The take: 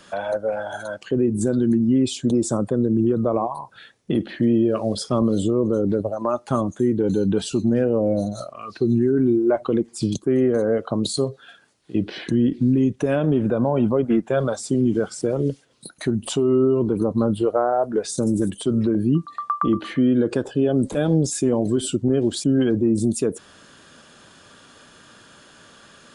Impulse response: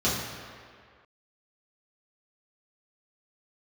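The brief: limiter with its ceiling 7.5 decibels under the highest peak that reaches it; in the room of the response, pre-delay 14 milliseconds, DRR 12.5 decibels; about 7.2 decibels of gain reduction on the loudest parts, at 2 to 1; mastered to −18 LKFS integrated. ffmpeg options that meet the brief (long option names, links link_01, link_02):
-filter_complex "[0:a]acompressor=threshold=-28dB:ratio=2,alimiter=limit=-21.5dB:level=0:latency=1,asplit=2[link_01][link_02];[1:a]atrim=start_sample=2205,adelay=14[link_03];[link_02][link_03]afir=irnorm=-1:irlink=0,volume=-26dB[link_04];[link_01][link_04]amix=inputs=2:normalize=0,volume=12dB"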